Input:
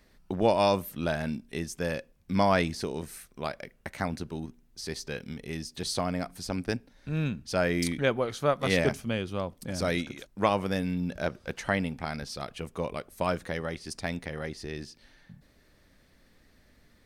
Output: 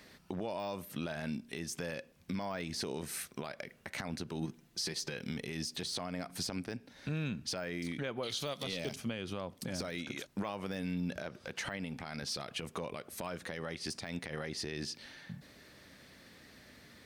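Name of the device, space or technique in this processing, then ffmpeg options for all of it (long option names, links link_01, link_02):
broadcast voice chain: -filter_complex "[0:a]asettb=1/sr,asplit=3[link_01][link_02][link_03];[link_01]atrim=end=8.234[link_04];[link_02]atrim=start=8.23:end=8.96,asetpts=PTS-STARTPTS,afade=type=in:duration=0.004:curve=qsin,afade=type=out:start_time=0.726:duration=0.004:curve=qsin,highshelf=frequency=2400:width_type=q:width=1.5:gain=13.5[link_05];[link_03]atrim=start=8.956[link_06];[link_04][link_05]acrossfade=duration=0.004:curve1=hsin:curve2=qsin[link_07];[link_07][link_06]acrossfade=duration=0.004:curve1=qsin:curve2=hsin,highpass=100,deesser=0.85,acompressor=threshold=-38dB:ratio=4,equalizer=frequency=3400:width_type=o:width=2.4:gain=4,alimiter=level_in=9dB:limit=-24dB:level=0:latency=1:release=85,volume=-9dB,asettb=1/sr,asplit=3[link_08][link_09][link_10];[link_08]atrim=end=4.414[link_11];[link_09]atrim=start=4.41:end=5.14,asetpts=PTS-STARTPTS,afade=type=in:duration=0.004:curve=qsin,afade=type=out:start_time=0.726:duration=0.004:curve=qsin,aecho=1:1:5.9:0.46,atrim=end_sample=32193[link_12];[link_10]atrim=start=5.136[link_13];[link_11][link_12]acrossfade=duration=0.004:curve1=hsin:curve2=qsin[link_14];[link_14][link_13]acrossfade=duration=0.004:curve1=qsin:curve2=hsin,volume=5.5dB"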